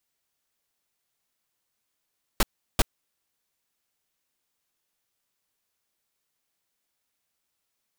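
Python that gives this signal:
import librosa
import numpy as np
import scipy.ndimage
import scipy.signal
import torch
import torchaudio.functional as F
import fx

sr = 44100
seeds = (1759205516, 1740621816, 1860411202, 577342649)

y = fx.noise_burst(sr, seeds[0], colour='pink', on_s=0.03, off_s=0.36, bursts=2, level_db=-18.5)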